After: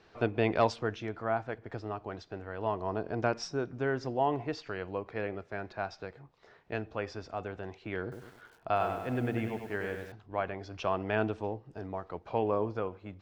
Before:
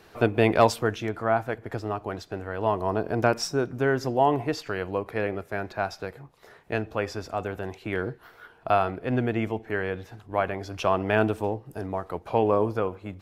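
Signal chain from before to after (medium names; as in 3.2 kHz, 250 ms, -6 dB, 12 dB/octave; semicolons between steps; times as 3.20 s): low-pass 5.9 kHz 24 dB/octave; 8.02–10.12 s: bit-crushed delay 98 ms, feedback 55%, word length 8-bit, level -6 dB; trim -7.5 dB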